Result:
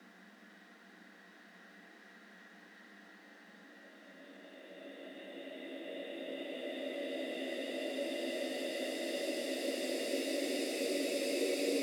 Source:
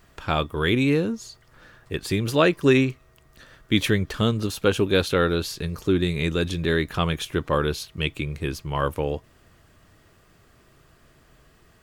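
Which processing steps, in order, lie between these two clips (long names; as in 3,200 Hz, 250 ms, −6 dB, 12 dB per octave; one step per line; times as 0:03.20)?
extreme stretch with random phases 23×, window 0.50 s, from 0:01.56
frequency shifter +180 Hz
level −7.5 dB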